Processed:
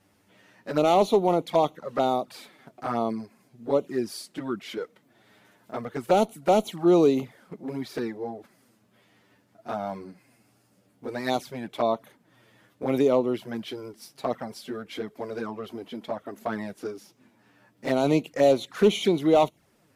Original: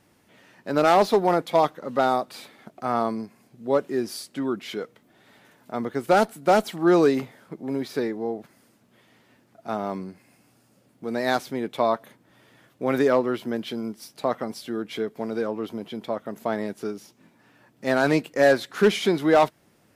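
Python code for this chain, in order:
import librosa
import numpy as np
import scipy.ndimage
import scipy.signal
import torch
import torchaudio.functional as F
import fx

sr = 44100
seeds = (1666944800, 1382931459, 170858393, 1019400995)

y = fx.env_flanger(x, sr, rest_ms=10.7, full_db=-19.0)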